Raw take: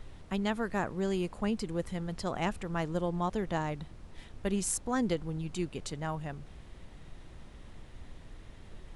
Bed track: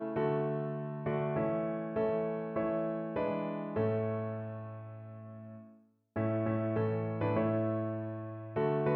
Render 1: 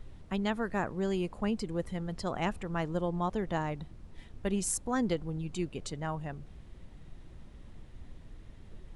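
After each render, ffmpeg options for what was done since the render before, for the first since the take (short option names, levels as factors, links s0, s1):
-af "afftdn=nr=6:nf=-51"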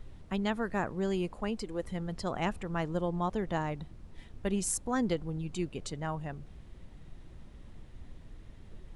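-filter_complex "[0:a]asettb=1/sr,asplit=3[s0][s1][s2];[s0]atrim=end=1.354[s3];[s1]atrim=start=1.35:end=1.83,asetpts=PTS-STARTPTS,afade=t=in:d=0.004:c=qsin,afade=t=out:st=0.476:d=0.004:c=qsin,equalizer=f=140:w=1.5:g=-11[s4];[s2]atrim=start=1.826[s5];[s3][s4]acrossfade=d=0.004:c1=hsin:c2=qsin[s6];[s6][s5]acrossfade=d=0.004:c1=qsin:c2=hsin"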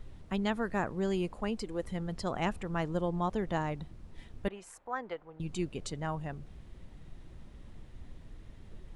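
-filter_complex "[0:a]asettb=1/sr,asplit=3[s0][s1][s2];[s0]atrim=end=4.484[s3];[s1]atrim=start=4.48:end=5.4,asetpts=PTS-STARTPTS,afade=t=in:d=0.004:c=qsin,afade=t=out:st=0.916:d=0.004:c=qsin,acrossover=split=530 2400:gain=0.0794 1 0.0891[s4][s5][s6];[s4][s5][s6]amix=inputs=3:normalize=0[s7];[s2]atrim=start=5.396[s8];[s3][s7]acrossfade=d=0.004:c1=hsin:c2=qsin[s9];[s9][s8]acrossfade=d=0.004:c1=qsin:c2=hsin"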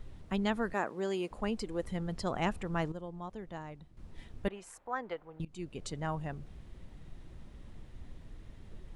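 -filter_complex "[0:a]asettb=1/sr,asplit=3[s0][s1][s2];[s0]atrim=end=0.734[s3];[s1]atrim=start=0.73:end=1.31,asetpts=PTS-STARTPTS,afade=t=in:d=0.004:c=qsin,afade=t=out:st=0.576:d=0.004:c=qsin,highpass=290[s4];[s2]atrim=start=1.306[s5];[s3][s4]acrossfade=d=0.004:c1=hsin:c2=qsin[s6];[s6][s5]acrossfade=d=0.004:c1=qsin:c2=hsin,asplit=4[s7][s8][s9][s10];[s7]atrim=end=2.922[s11];[s8]atrim=start=2.918:end=3.972,asetpts=PTS-STARTPTS,volume=0.282[s12];[s9]atrim=start=3.968:end=5.45,asetpts=PTS-STARTPTS,afade=t=out:st=1.478:d=0.004:c=hsin:silence=0.0841395[s13];[s10]atrim=start=5.45,asetpts=PTS-STARTPTS,afade=t=in:d=0.71:c=qsin:silence=0.0841395[s14];[s11][s12]acrossfade=d=0.004:c1=hsin:c2=hsin[s15];[s13][s14]concat=n=2:v=0:a=1[s16];[s15][s16]acrossfade=d=0.004:c1=hsin:c2=hsin"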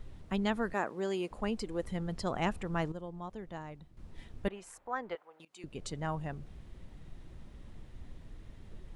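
-filter_complex "[0:a]asettb=1/sr,asplit=3[s0][s1][s2];[s0]atrim=end=5.154[s3];[s1]atrim=start=5.15:end=5.64,asetpts=PTS-STARTPTS,afade=t=in:d=0.004:c=qsin,afade=t=out:st=0.486:d=0.004:c=qsin,highpass=640[s4];[s2]atrim=start=5.636[s5];[s3][s4]acrossfade=d=0.004:c1=hsin:c2=qsin[s6];[s6][s5]acrossfade=d=0.004:c1=qsin:c2=hsin"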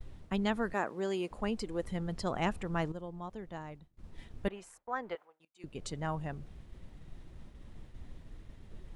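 -af "agate=range=0.0224:threshold=0.00501:ratio=3:detection=peak"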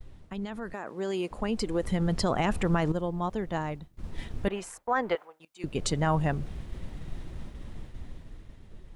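-af "alimiter=level_in=1.5:limit=0.0631:level=0:latency=1:release=40,volume=0.668,dynaudnorm=f=350:g=9:m=3.98"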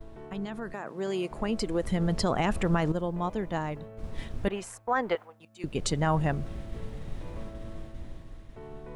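-filter_complex "[1:a]volume=0.188[s0];[0:a][s0]amix=inputs=2:normalize=0"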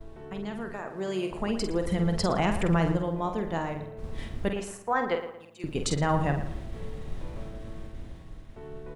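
-filter_complex "[0:a]asplit=2[s0][s1];[s1]adelay=48,volume=0.447[s2];[s0][s2]amix=inputs=2:normalize=0,asplit=2[s3][s4];[s4]adelay=114,lowpass=f=3200:p=1,volume=0.282,asplit=2[s5][s6];[s6]adelay=114,lowpass=f=3200:p=1,volume=0.39,asplit=2[s7][s8];[s8]adelay=114,lowpass=f=3200:p=1,volume=0.39,asplit=2[s9][s10];[s10]adelay=114,lowpass=f=3200:p=1,volume=0.39[s11];[s3][s5][s7][s9][s11]amix=inputs=5:normalize=0"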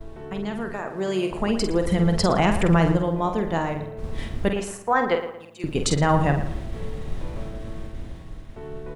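-af "volume=2"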